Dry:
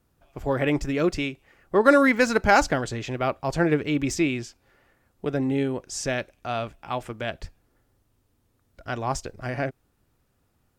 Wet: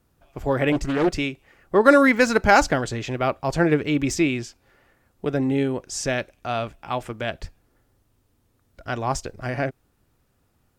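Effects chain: 0.72–1.12 Doppler distortion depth 0.61 ms; gain +2.5 dB

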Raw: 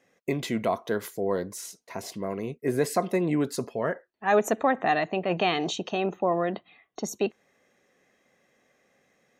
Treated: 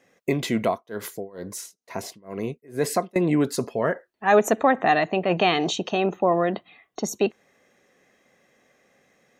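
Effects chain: 0.63–3.16 tremolo 2.2 Hz, depth 96%; gain +4.5 dB

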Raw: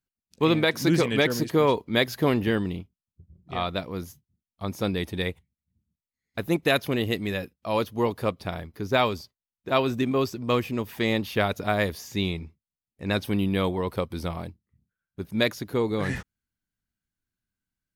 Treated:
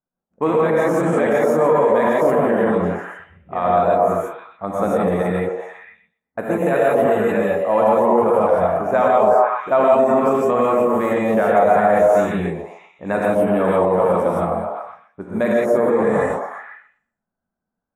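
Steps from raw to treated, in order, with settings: delay with a stepping band-pass 0.123 s, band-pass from 470 Hz, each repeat 0.7 oct, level -1 dB; non-linear reverb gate 0.19 s rising, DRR -5.5 dB; limiter -12.5 dBFS, peak gain reduction 11.5 dB; EQ curve 110 Hz 0 dB, 200 Hz +9 dB, 380 Hz +4 dB, 590 Hz +12 dB, 1600 Hz +4 dB, 4700 Hz -24 dB, 7500 Hz +3 dB, 15000 Hz -10 dB; low-pass opened by the level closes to 1100 Hz, open at -20 dBFS; low shelf 290 Hz -9 dB

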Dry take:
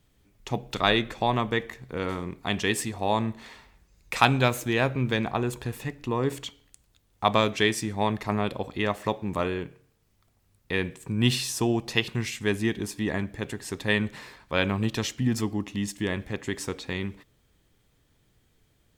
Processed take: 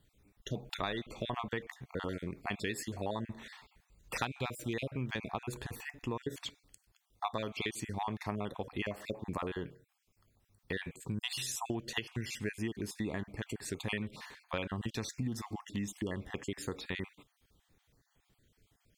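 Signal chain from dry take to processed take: random spectral dropouts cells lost 36%; compressor 6:1, threshold -30 dBFS, peak gain reduction 15.5 dB; gain -3 dB

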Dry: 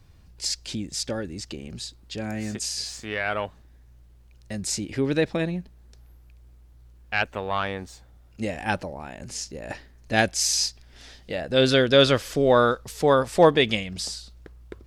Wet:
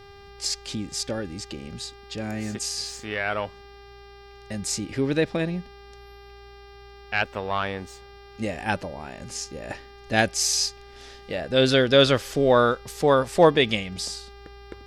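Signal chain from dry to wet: buzz 400 Hz, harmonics 14, -48 dBFS -5 dB/oct

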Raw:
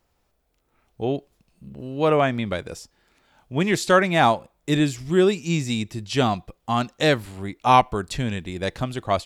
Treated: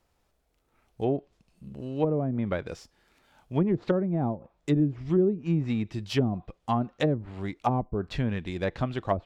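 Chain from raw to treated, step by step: switching dead time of 0.052 ms; treble ducked by the level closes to 330 Hz, closed at -16 dBFS; gain -2 dB

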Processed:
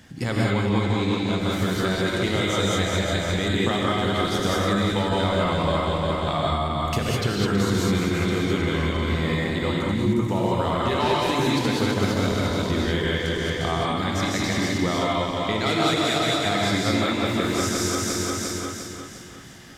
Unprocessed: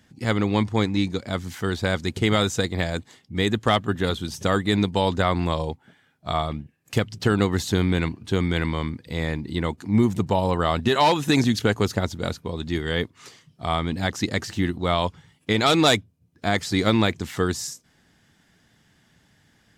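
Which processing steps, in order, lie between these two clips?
regenerating reverse delay 0.176 s, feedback 65%, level -3.5 dB; compressor 5:1, threshold -34 dBFS, peak gain reduction 19 dB; non-linear reverb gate 0.23 s rising, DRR -3 dB; gain +8.5 dB

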